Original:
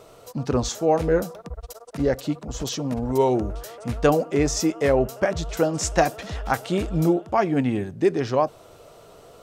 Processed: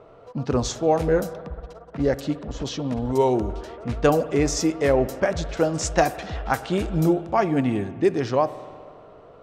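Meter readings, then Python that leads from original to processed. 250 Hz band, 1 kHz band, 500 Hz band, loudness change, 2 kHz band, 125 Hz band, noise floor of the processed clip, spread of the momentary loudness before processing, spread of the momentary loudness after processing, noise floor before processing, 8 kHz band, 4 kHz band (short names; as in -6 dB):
0.0 dB, 0.0 dB, 0.0 dB, 0.0 dB, 0.0 dB, +0.5 dB, -48 dBFS, 11 LU, 12 LU, -49 dBFS, -1.0 dB, -0.5 dB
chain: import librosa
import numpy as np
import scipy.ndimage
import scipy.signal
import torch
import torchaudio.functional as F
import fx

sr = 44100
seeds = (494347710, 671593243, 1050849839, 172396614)

y = fx.rev_spring(x, sr, rt60_s=2.2, pass_ms=(50,), chirp_ms=35, drr_db=14.5)
y = fx.env_lowpass(y, sr, base_hz=1700.0, full_db=-18.0)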